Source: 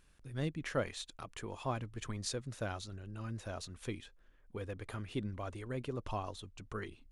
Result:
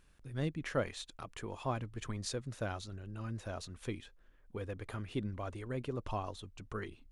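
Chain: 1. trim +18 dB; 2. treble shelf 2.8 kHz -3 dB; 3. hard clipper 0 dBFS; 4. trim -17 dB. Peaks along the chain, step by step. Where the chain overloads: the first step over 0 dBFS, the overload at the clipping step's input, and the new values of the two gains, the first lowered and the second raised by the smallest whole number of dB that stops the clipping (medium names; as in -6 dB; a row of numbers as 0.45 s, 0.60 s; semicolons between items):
-4.5 dBFS, -4.5 dBFS, -4.5 dBFS, -21.5 dBFS; nothing clips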